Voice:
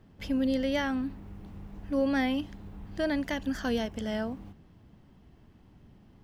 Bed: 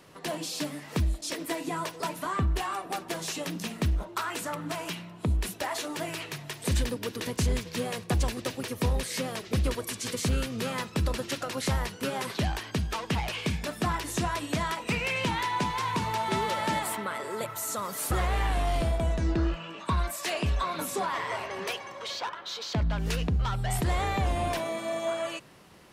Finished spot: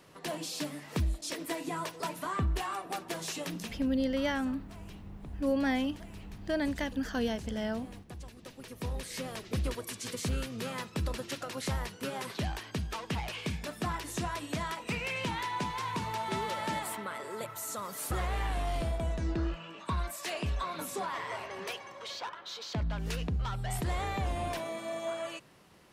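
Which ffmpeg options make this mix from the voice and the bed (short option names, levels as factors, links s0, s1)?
-filter_complex "[0:a]adelay=3500,volume=0.794[s0];[1:a]volume=3.35,afade=t=out:st=3.59:d=0.21:silence=0.158489,afade=t=in:st=8.34:d=1.02:silence=0.199526[s1];[s0][s1]amix=inputs=2:normalize=0"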